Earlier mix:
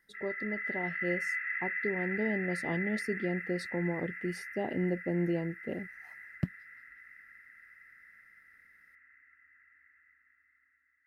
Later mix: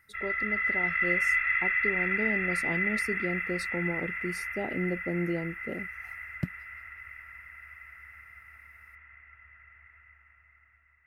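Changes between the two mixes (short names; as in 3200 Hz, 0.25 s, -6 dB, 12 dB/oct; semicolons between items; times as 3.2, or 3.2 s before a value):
speech: add high shelf 6900 Hz +10.5 dB; background: remove double band-pass 690 Hz, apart 2.6 oct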